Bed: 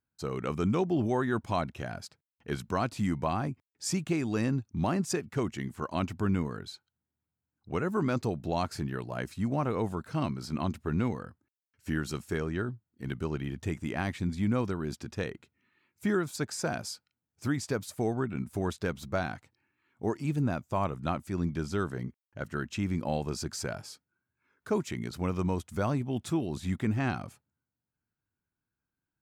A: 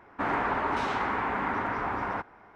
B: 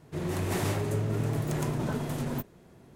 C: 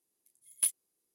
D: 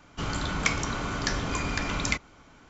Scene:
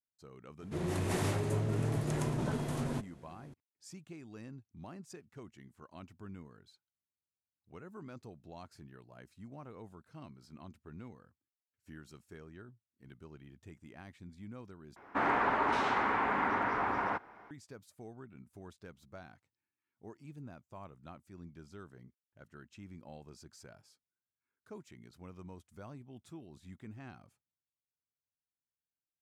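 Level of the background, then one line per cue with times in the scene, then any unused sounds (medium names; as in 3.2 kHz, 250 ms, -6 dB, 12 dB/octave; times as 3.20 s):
bed -19.5 dB
0.59 s: add B -3.5 dB + steep low-pass 12 kHz 72 dB/octave
14.96 s: replace with A -1.5 dB + bass shelf 100 Hz -9.5 dB
not used: C, D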